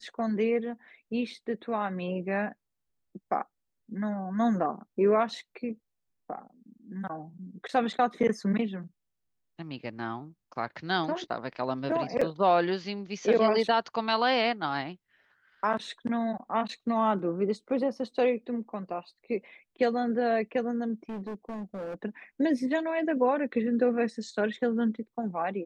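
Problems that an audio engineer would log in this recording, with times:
12.21 s: dropout 4.8 ms
21.09–21.94 s: clipped -33.5 dBFS

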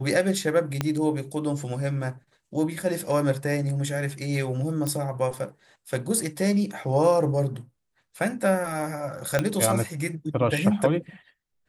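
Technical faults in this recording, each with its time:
0.81 s: pop -10 dBFS
4.87 s: pop -15 dBFS
9.39 s: pop -9 dBFS

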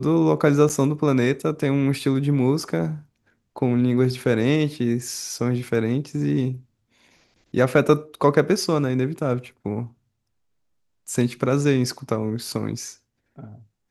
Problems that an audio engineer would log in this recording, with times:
0.69–0.70 s: dropout 7.9 ms

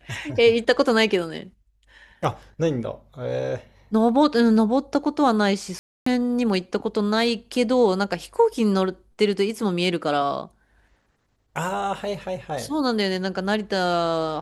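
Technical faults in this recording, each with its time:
5.79–6.06 s: dropout 274 ms

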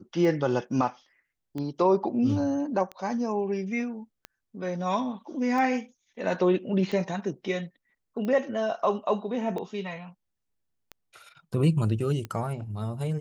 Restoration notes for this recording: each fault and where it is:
tick 45 rpm -22 dBFS

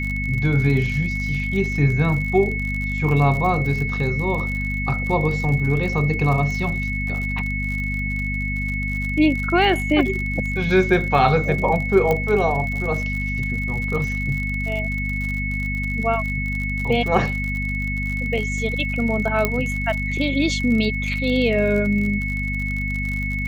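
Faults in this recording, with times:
crackle 56 per s -27 dBFS
hum 50 Hz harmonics 5 -26 dBFS
whine 2.2 kHz -26 dBFS
12.11 s: pop -9 dBFS
19.45 s: pop -5 dBFS

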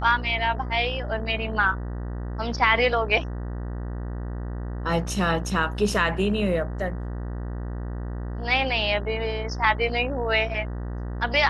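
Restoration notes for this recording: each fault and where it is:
buzz 60 Hz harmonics 32 -31 dBFS

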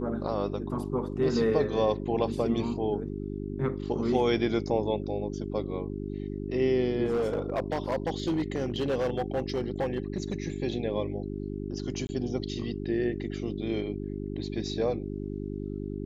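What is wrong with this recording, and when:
hum 50 Hz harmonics 8 -35 dBFS
7.04–10.44 s: clipped -23.5 dBFS
12.07–12.09 s: dropout 20 ms

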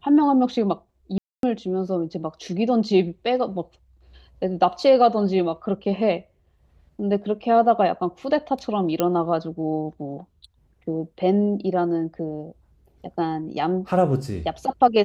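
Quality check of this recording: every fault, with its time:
1.18–1.43 s: dropout 252 ms
9.00 s: pop -8 dBFS

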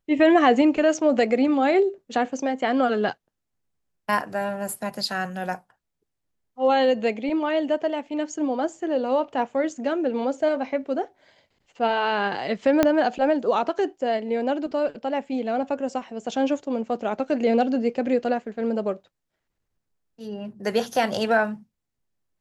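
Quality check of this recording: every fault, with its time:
12.83 s: pop -5 dBFS

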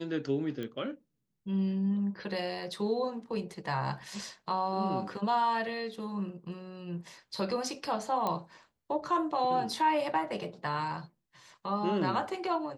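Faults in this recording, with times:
0.63 s: pop -26 dBFS
8.27 s: pop -18 dBFS

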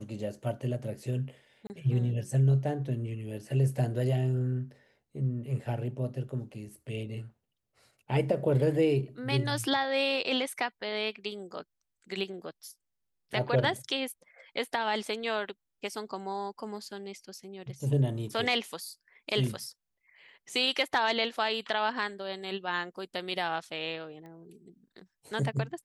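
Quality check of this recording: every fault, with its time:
1.67–1.70 s: dropout 29 ms
24.26 s: pop -36 dBFS

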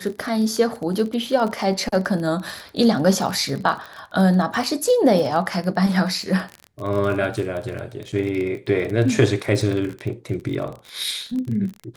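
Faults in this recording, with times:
crackle 30 per s -26 dBFS
8.12–8.13 s: dropout 6.1 ms

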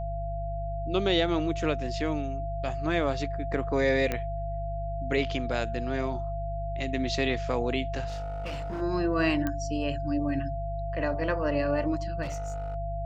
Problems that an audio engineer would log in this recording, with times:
hum 50 Hz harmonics 3 -34 dBFS
whine 680 Hz -34 dBFS
4.12 s: pop -15 dBFS
8.07–8.82 s: clipped -30.5 dBFS
9.47 s: pop -16 dBFS
12.22–12.76 s: clipped -29.5 dBFS

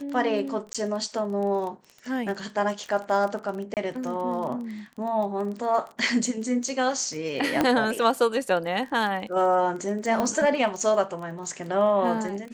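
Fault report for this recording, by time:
crackle 21 per s -32 dBFS
0.73–0.75 s: dropout 16 ms
3.74–3.77 s: dropout 28 ms
7.61 s: pop -9 dBFS
10.20 s: pop -13 dBFS

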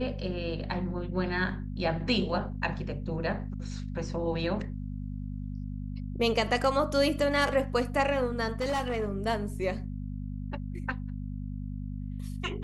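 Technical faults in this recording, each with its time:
hum 50 Hz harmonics 5 -36 dBFS
8.60–9.08 s: clipped -25 dBFS

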